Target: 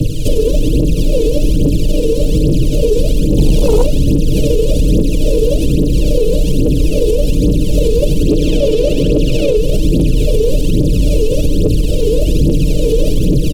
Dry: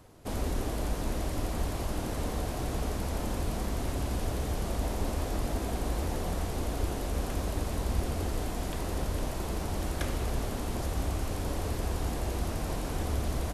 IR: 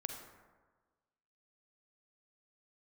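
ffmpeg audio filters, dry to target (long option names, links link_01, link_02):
-filter_complex "[0:a]asettb=1/sr,asplit=3[link_01][link_02][link_03];[link_01]atrim=end=8.284[link_04];[link_02]atrim=start=8.28:end=9.57,asetpts=PTS-STARTPTS,afade=type=in:duration=0.004:curve=qsin,afade=type=out:start_time=1.286:duration=0.004:curve=qsin,asplit=2[link_05][link_06];[link_06]highpass=frequency=720:poles=1,volume=28dB,asoftclip=type=tanh:threshold=-20dB[link_07];[link_05][link_07]amix=inputs=2:normalize=0,lowpass=frequency=2900:poles=1,volume=-6dB[link_08];[link_03]atrim=start=9.566[link_09];[link_04][link_08]acrossfade=duration=0.004:curve1=hsin:curve2=qsin[link_10];[link_10][link_09]acrossfade=duration=0.004:curve1=qsin:curve2=hsin,aecho=1:1:6.6:0.76,asplit=2[link_11][link_12];[link_12]adelay=192,lowpass=frequency=2100:poles=1,volume=-11dB,asplit=2[link_13][link_14];[link_14]adelay=192,lowpass=frequency=2100:poles=1,volume=0.44,asplit=2[link_15][link_16];[link_16]adelay=192,lowpass=frequency=2100:poles=1,volume=0.44,asplit=2[link_17][link_18];[link_18]adelay=192,lowpass=frequency=2100:poles=1,volume=0.44,asplit=2[link_19][link_20];[link_20]adelay=192,lowpass=frequency=2100:poles=1,volume=0.44[link_21];[link_11][link_13][link_15][link_17][link_19][link_21]amix=inputs=6:normalize=0,acrusher=bits=5:mode=log:mix=0:aa=0.000001,asuperstop=centerf=1200:order=20:qfactor=0.61,aemphasis=mode=reproduction:type=cd,aphaser=in_gain=1:out_gain=1:delay=2.4:decay=0.8:speed=1.2:type=triangular,acrossover=split=140|1500[link_22][link_23][link_24];[link_22]acompressor=threshold=-29dB:ratio=4[link_25];[link_23]acompressor=threshold=-27dB:ratio=4[link_26];[link_24]acompressor=threshold=-51dB:ratio=4[link_27];[link_25][link_26][link_27]amix=inputs=3:normalize=0,asplit=3[link_28][link_29][link_30];[link_28]afade=type=out:start_time=3.37:duration=0.02[link_31];[link_29]aeval=exprs='0.106*sin(PI/2*1.41*val(0)/0.106)':channel_layout=same,afade=type=in:start_time=3.37:duration=0.02,afade=type=out:start_time=3.85:duration=0.02[link_32];[link_30]afade=type=in:start_time=3.85:duration=0.02[link_33];[link_31][link_32][link_33]amix=inputs=3:normalize=0,acompressor=threshold=-40dB:ratio=2.5,alimiter=level_in=34.5dB:limit=-1dB:release=50:level=0:latency=1,volume=-2.5dB"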